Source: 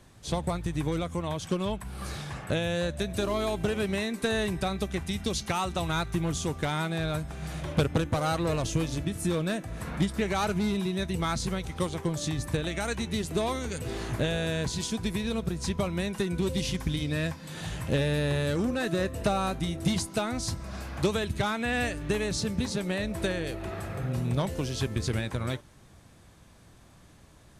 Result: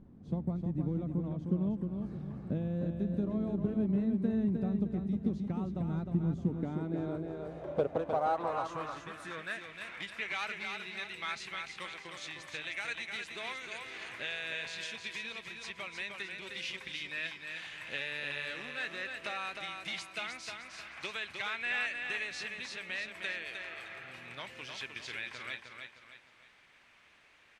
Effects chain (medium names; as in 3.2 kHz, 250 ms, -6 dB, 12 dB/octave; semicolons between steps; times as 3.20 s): feedback delay 308 ms, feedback 39%, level -5.5 dB; added noise brown -42 dBFS; band-pass sweep 210 Hz -> 2.3 kHz, 6.45–9.80 s; trim +2 dB